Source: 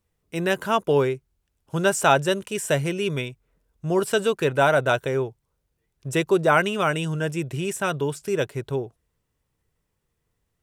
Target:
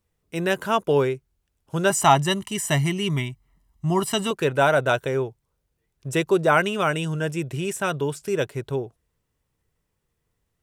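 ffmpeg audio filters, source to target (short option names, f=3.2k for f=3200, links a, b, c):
-filter_complex "[0:a]asettb=1/sr,asplit=3[a][b][c];[a]atrim=end=1.904[d];[b]atrim=start=1.9:end=4.31,asetpts=PTS-STARTPTS,afade=t=in:d=0.004:c=qsin,afade=t=out:st=2.406:d=0.004:c=qsin,aecho=1:1:1:0.95,atrim=end_sample=106281[e];[c]atrim=start=4.306[f];[d][e]acrossfade=d=0.004:c1=hsin:c2=qsin[g];[g][f]acrossfade=d=0.004:c1=qsin:c2=hsin"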